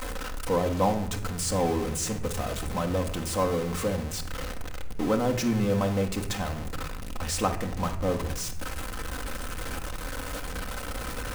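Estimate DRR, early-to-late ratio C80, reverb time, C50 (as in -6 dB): 3.0 dB, 14.0 dB, 0.80 s, 11.0 dB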